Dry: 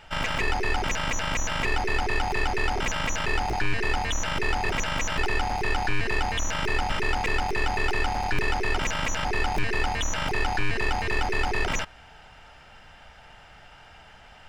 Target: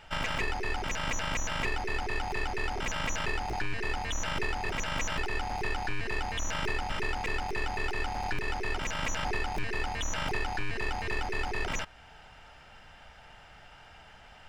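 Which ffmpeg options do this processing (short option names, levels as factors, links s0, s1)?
-af "alimiter=limit=0.126:level=0:latency=1:release=495,volume=0.708"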